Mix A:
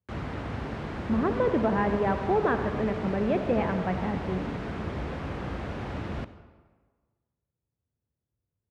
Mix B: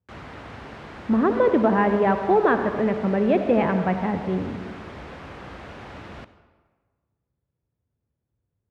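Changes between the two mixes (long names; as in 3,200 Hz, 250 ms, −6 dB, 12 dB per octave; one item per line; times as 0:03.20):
speech +6.5 dB
background: add low-shelf EQ 450 Hz −9 dB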